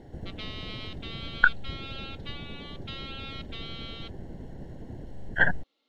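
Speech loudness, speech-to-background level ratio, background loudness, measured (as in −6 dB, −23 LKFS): −29.5 LKFS, 11.5 dB, −41.0 LKFS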